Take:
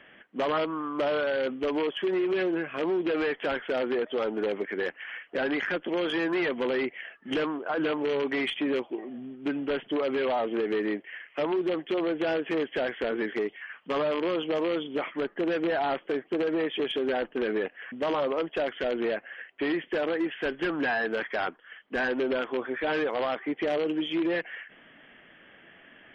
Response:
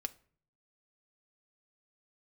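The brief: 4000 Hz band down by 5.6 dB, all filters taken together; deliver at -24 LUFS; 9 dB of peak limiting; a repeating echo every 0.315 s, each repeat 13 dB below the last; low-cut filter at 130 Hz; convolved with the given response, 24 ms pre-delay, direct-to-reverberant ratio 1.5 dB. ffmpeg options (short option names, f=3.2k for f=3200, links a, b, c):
-filter_complex "[0:a]highpass=130,equalizer=f=4k:t=o:g=-8.5,alimiter=level_in=4dB:limit=-24dB:level=0:latency=1,volume=-4dB,aecho=1:1:315|630|945:0.224|0.0493|0.0108,asplit=2[a][b];[1:a]atrim=start_sample=2205,adelay=24[c];[b][c]afir=irnorm=-1:irlink=0,volume=-0.5dB[d];[a][d]amix=inputs=2:normalize=0,volume=9.5dB"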